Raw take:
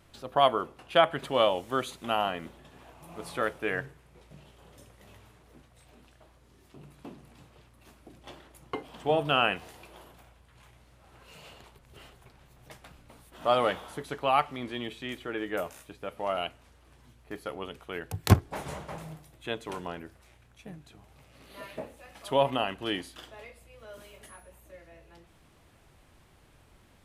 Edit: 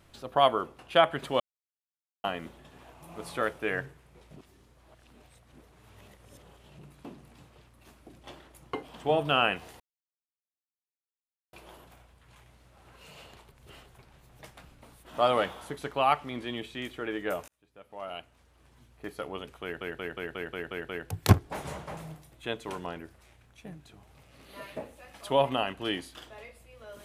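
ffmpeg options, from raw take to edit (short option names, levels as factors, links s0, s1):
-filter_complex "[0:a]asplit=14[s0][s1][s2][s3][s4][s5][s6][s7][s8][s9][s10][s11][s12][s13];[s0]atrim=end=1.4,asetpts=PTS-STARTPTS,afade=t=out:st=1.396:d=0.004:c=hsin[s14];[s1]atrim=start=1.4:end=2.24,asetpts=PTS-STARTPTS,volume=0[s15];[s2]atrim=start=2.24:end=4.362,asetpts=PTS-STARTPTS,afade=t=in:d=0.004:c=hsin[s16];[s3]atrim=start=4.358:end=6.792,asetpts=PTS-STARTPTS,areverse[s17];[s4]atrim=start=6.788:end=9.8,asetpts=PTS-STARTPTS,afade=t=out:st=3.008:d=0.004:c=hsin,apad=pad_dur=1.73[s18];[s5]atrim=start=9.8:end=15.75,asetpts=PTS-STARTPTS,afade=t=in:d=0.004:c=hsin,afade=t=out:st=5.946:d=0.004:c=hsin[s19];[s6]atrim=start=15.75:end=18.082,asetpts=PTS-STARTPTS,afade=t=in:d=1.59[s20];[s7]atrim=start=17.898:end=18.082[s21];[s8]atrim=start=17.898:end=18.082[s22];[s9]atrim=start=17.898:end=18.082[s23];[s10]atrim=start=17.898:end=18.082[s24];[s11]atrim=start=17.898:end=18.082[s25];[s12]atrim=start=17.898:end=18.082[s26];[s13]atrim=start=17.898[s27];[s14][s15][s16]concat=n=3:v=0:a=1[s28];[s28][s17]acrossfade=d=0.004:c1=hsin:c2=hsin[s29];[s18][s19][s20]concat=n=3:v=0:a=1[s30];[s29][s30]acrossfade=d=0.004:c1=hsin:c2=hsin[s31];[s31][s21]acrossfade=d=0.004:c1=hsin:c2=hsin[s32];[s32][s22]acrossfade=d=0.004:c1=hsin:c2=hsin[s33];[s33][s23]acrossfade=d=0.004:c1=hsin:c2=hsin[s34];[s34][s24]acrossfade=d=0.004:c1=hsin:c2=hsin[s35];[s35][s25]acrossfade=d=0.004:c1=hsin:c2=hsin[s36];[s36][s26]acrossfade=d=0.004:c1=hsin:c2=hsin[s37];[s37][s27]acrossfade=d=0.004:c1=hsin:c2=hsin"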